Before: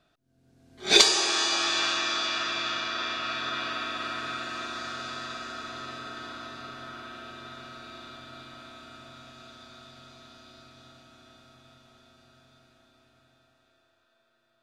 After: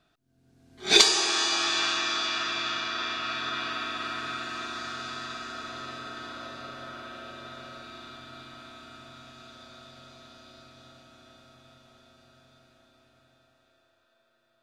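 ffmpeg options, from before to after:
ffmpeg -i in.wav -af "asetnsamples=nb_out_samples=441:pad=0,asendcmd='5.54 equalizer g 0.5;6.36 equalizer g 8;7.82 equalizer g -2;9.55 equalizer g 5',equalizer=frequency=560:width_type=o:width=0.29:gain=-6" out.wav

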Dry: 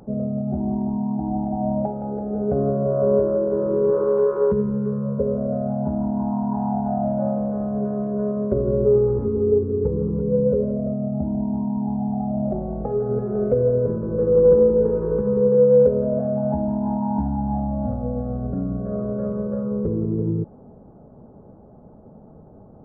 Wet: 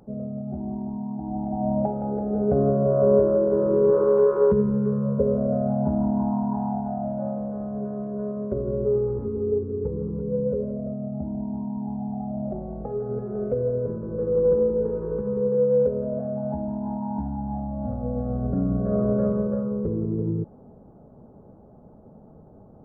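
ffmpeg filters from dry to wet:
ffmpeg -i in.wav -af "volume=10.5dB,afade=type=in:start_time=1.22:duration=0.71:silence=0.421697,afade=type=out:start_time=6.1:duration=0.84:silence=0.473151,afade=type=in:start_time=17.74:duration=1.38:silence=0.316228,afade=type=out:start_time=19.12:duration=0.63:silence=0.446684" out.wav

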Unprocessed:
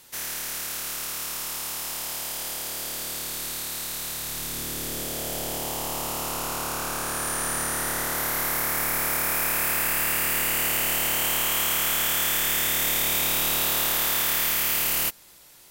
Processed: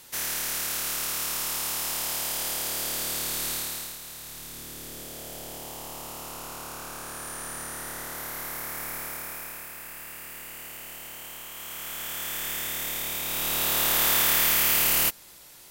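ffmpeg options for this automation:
ffmpeg -i in.wav -af "volume=20.5dB,afade=type=out:start_time=3.52:duration=0.46:silence=0.281838,afade=type=out:start_time=8.92:duration=0.77:silence=0.421697,afade=type=in:start_time=11.53:duration=0.95:silence=0.354813,afade=type=in:start_time=13.24:duration=0.85:silence=0.334965" out.wav

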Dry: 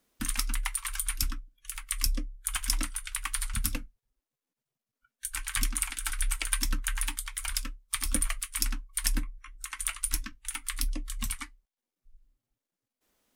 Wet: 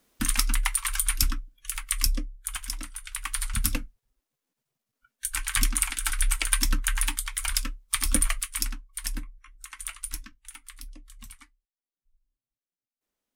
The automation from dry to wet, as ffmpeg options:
ffmpeg -i in.wav -af "volume=18dB,afade=type=out:start_time=1.74:duration=1.04:silence=0.223872,afade=type=in:start_time=2.78:duration=0.98:silence=0.251189,afade=type=out:start_time=8.37:duration=0.41:silence=0.354813,afade=type=out:start_time=10:duration=0.78:silence=0.375837" out.wav

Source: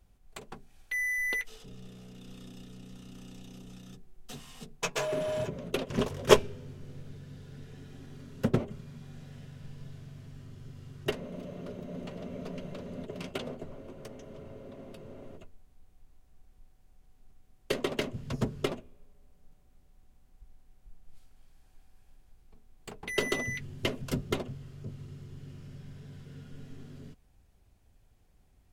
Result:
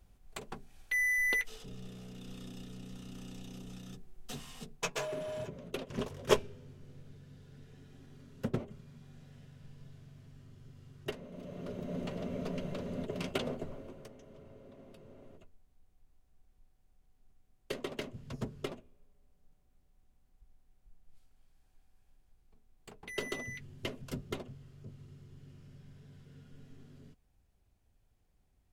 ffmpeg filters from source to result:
ffmpeg -i in.wav -af "volume=10.5dB,afade=type=out:start_time=4.41:duration=0.75:silence=0.375837,afade=type=in:start_time=11.31:duration=0.61:silence=0.334965,afade=type=out:start_time=13.57:duration=0.56:silence=0.316228" out.wav

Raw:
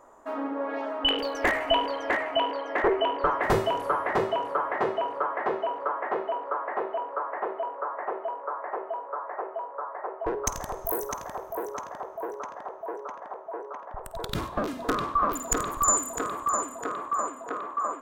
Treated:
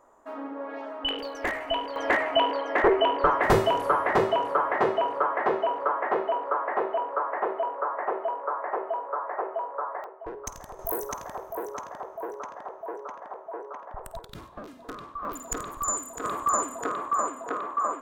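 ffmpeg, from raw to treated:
ffmpeg -i in.wav -af "asetnsamples=nb_out_samples=441:pad=0,asendcmd='1.96 volume volume 3dB;10.04 volume volume -8.5dB;10.79 volume volume -1dB;14.19 volume volume -12.5dB;15.25 volume volume -6dB;16.24 volume volume 2dB',volume=-5dB" out.wav

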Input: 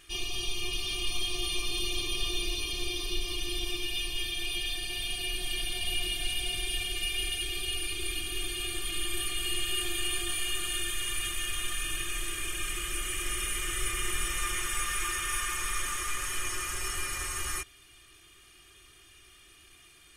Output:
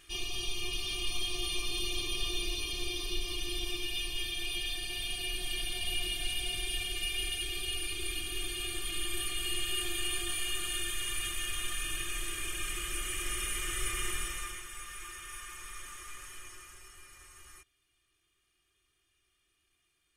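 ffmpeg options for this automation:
ffmpeg -i in.wav -af "volume=-2.5dB,afade=type=out:start_time=14.04:duration=0.6:silence=0.298538,afade=type=out:start_time=16.19:duration=0.71:silence=0.446684" out.wav

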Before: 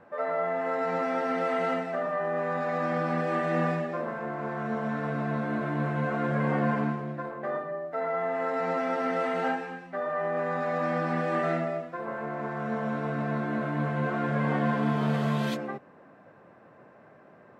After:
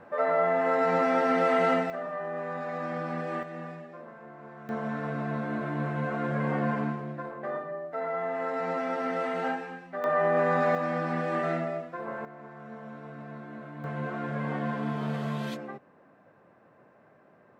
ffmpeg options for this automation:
ffmpeg -i in.wav -af "asetnsamples=nb_out_samples=441:pad=0,asendcmd='1.9 volume volume -5dB;3.43 volume volume -13dB;4.69 volume volume -2dB;10.04 volume volume 5dB;10.75 volume volume -1.5dB;12.25 volume volume -12.5dB;13.84 volume volume -5dB',volume=4dB" out.wav

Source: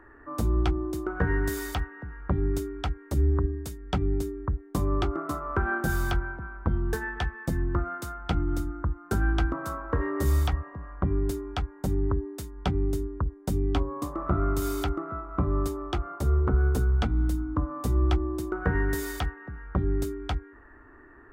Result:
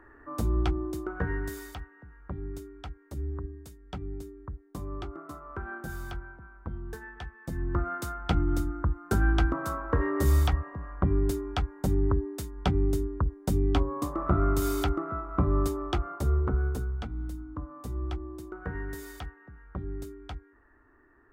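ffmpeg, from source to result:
ffmpeg -i in.wav -af "volume=10dB,afade=type=out:start_time=0.83:duration=0.95:silence=0.354813,afade=type=in:start_time=7.41:duration=0.52:silence=0.251189,afade=type=out:start_time=15.89:duration=1.08:silence=0.281838" out.wav

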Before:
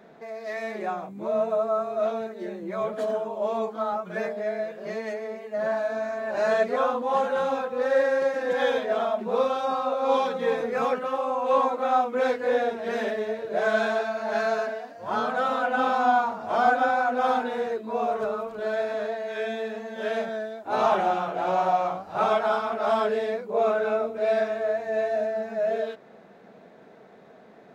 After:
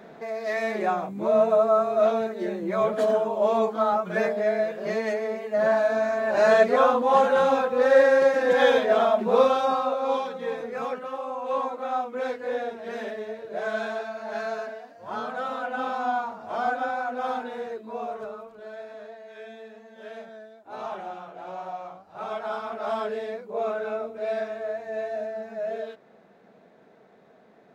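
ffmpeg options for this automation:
ffmpeg -i in.wav -af "volume=12.5dB,afade=type=out:start_time=9.45:duration=0.79:silence=0.298538,afade=type=out:start_time=17.89:duration=0.77:silence=0.446684,afade=type=in:start_time=22.18:duration=0.49:silence=0.421697" out.wav

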